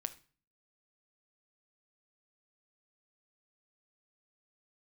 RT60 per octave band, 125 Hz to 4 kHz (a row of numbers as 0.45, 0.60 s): 0.65, 0.60, 0.40, 0.40, 0.40, 0.35 s